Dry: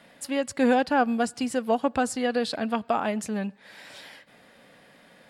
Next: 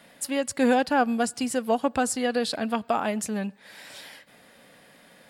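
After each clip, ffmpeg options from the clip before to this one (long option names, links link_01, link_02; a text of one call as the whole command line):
ffmpeg -i in.wav -af "highshelf=frequency=7400:gain=10" out.wav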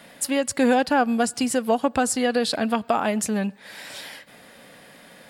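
ffmpeg -i in.wav -af "acompressor=threshold=-28dB:ratio=1.5,volume=6dB" out.wav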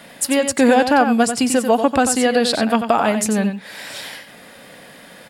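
ffmpeg -i in.wav -af "aecho=1:1:92:0.376,volume=5.5dB" out.wav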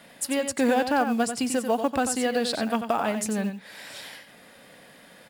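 ffmpeg -i in.wav -af "acrusher=bits=7:mode=log:mix=0:aa=0.000001,volume=-9dB" out.wav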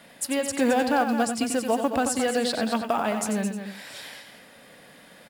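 ffmpeg -i in.wav -af "aecho=1:1:218:0.355" out.wav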